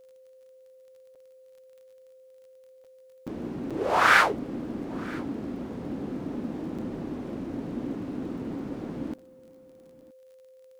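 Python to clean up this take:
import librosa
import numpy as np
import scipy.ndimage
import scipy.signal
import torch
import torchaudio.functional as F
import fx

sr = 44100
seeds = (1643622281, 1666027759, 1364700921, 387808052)

y = fx.fix_declick_ar(x, sr, threshold=6.5)
y = fx.notch(y, sr, hz=520.0, q=30.0)
y = fx.fix_interpolate(y, sr, at_s=(1.15, 2.84, 3.27, 3.7, 6.78, 9.18, 10.01), length_ms=6.3)
y = fx.fix_echo_inverse(y, sr, delay_ms=972, level_db=-23.0)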